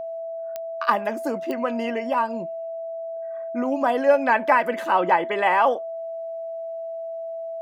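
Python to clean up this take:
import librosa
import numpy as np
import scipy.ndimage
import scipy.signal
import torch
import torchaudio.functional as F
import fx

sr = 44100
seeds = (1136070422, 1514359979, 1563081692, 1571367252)

y = fx.fix_declick_ar(x, sr, threshold=10.0)
y = fx.notch(y, sr, hz=660.0, q=30.0)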